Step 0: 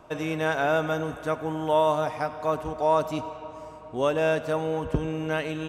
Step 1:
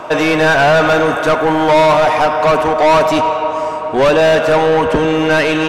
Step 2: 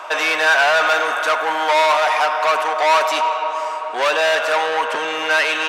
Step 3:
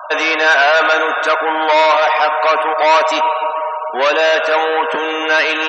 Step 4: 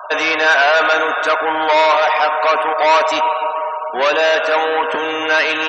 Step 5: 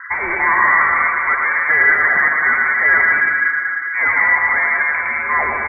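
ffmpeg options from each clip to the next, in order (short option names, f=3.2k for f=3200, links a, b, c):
-filter_complex "[0:a]asplit=2[a][b];[b]highpass=f=720:p=1,volume=26dB,asoftclip=type=tanh:threshold=-10dB[c];[a][c]amix=inputs=2:normalize=0,lowpass=f=3k:p=1,volume=-6dB,volume=7dB"
-af "highpass=950"
-af "bandreject=f=850:w=25,afftfilt=real='re*gte(hypot(re,im),0.0355)':imag='im*gte(hypot(re,im),0.0355)':win_size=1024:overlap=0.75,lowshelf=f=310:g=10.5,volume=2.5dB"
-af "tremolo=f=190:d=0.261"
-af "highshelf=f=2k:g=-10.5,lowpass=f=2.2k:t=q:w=0.5098,lowpass=f=2.2k:t=q:w=0.6013,lowpass=f=2.2k:t=q:w=0.9,lowpass=f=2.2k:t=q:w=2.563,afreqshift=-2600,aecho=1:1:110|192.5|254.4|300.8|335.6:0.631|0.398|0.251|0.158|0.1"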